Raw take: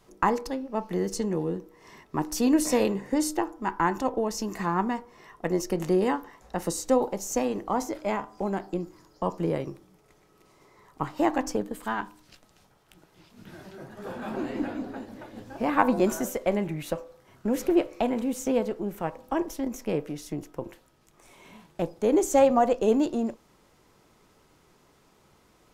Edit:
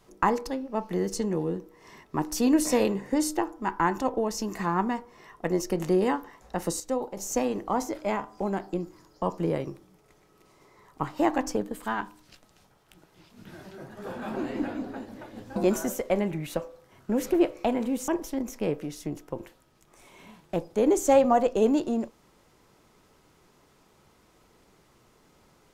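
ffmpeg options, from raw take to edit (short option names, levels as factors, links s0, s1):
-filter_complex "[0:a]asplit=5[s0][s1][s2][s3][s4];[s0]atrim=end=6.802[s5];[s1]atrim=start=6.798:end=7.172,asetpts=PTS-STARTPTS,volume=0.473[s6];[s2]atrim=start=7.168:end=15.562[s7];[s3]atrim=start=15.918:end=18.442[s8];[s4]atrim=start=19.338[s9];[s5][s6]acrossfade=d=0.004:c1=hsin:c2=hsin[s10];[s10][s7]acrossfade=d=0.004:c1=hsin:c2=hsin[s11];[s11][s8]acrossfade=d=0.004:c1=hsin:c2=hsin[s12];[s12][s9]acrossfade=d=0.004:c1=hsin:c2=hsin"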